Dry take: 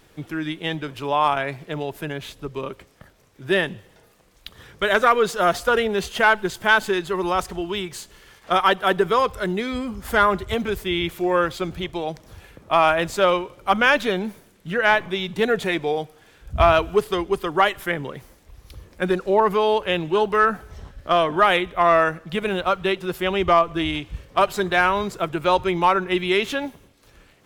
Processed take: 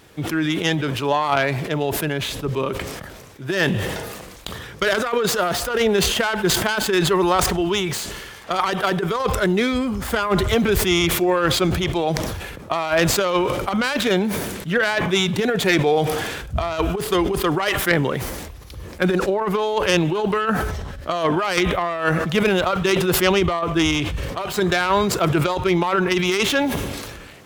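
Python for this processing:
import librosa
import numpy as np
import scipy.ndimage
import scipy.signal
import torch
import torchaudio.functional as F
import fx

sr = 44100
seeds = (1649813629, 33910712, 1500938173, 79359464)

y = fx.tracing_dist(x, sr, depth_ms=0.14)
y = fx.over_compress(y, sr, threshold_db=-21.0, ratio=-0.5)
y = scipy.signal.sosfilt(scipy.signal.butter(2, 47.0, 'highpass', fs=sr, output='sos'), y)
y = fx.sustainer(y, sr, db_per_s=34.0)
y = y * 10.0 ** (2.5 / 20.0)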